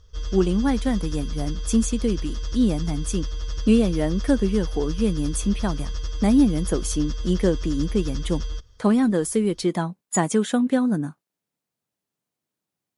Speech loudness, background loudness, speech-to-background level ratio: -23.5 LUFS, -32.5 LUFS, 9.0 dB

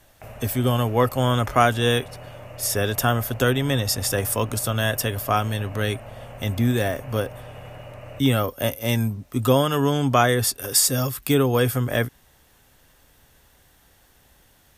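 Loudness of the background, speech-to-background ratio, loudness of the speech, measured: -40.5 LUFS, 18.5 dB, -22.0 LUFS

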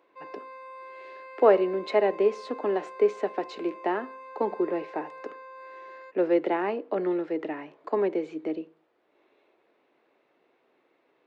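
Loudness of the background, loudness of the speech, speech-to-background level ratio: -44.0 LUFS, -27.5 LUFS, 16.5 dB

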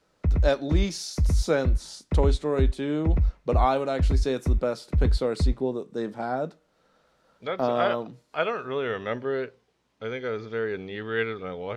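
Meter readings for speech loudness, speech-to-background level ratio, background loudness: -29.0 LUFS, -1.0 dB, -28.0 LUFS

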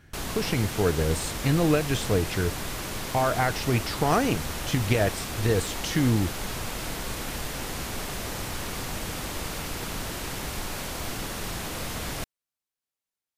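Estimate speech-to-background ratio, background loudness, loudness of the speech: 6.5 dB, -33.0 LUFS, -26.5 LUFS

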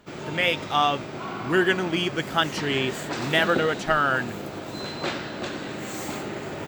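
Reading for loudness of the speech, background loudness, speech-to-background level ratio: -24.0 LUFS, -32.5 LUFS, 8.5 dB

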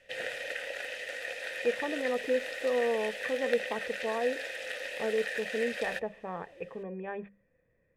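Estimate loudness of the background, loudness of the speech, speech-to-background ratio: -36.5 LUFS, -34.0 LUFS, 2.5 dB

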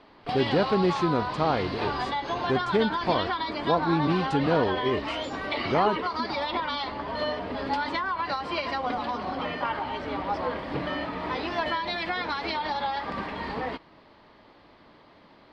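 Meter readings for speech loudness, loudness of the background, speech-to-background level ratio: -27.5 LUFS, -30.0 LUFS, 2.5 dB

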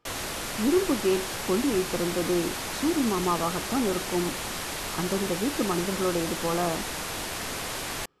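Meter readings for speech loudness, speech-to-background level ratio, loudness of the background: -28.5 LUFS, 3.0 dB, -31.5 LUFS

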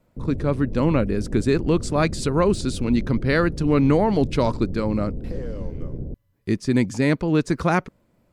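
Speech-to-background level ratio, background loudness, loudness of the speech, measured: 11.5 dB, -33.5 LUFS, -22.0 LUFS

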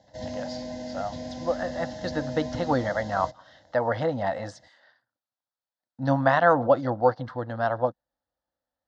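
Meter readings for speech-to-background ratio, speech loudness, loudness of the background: 10.0 dB, -26.5 LUFS, -36.5 LUFS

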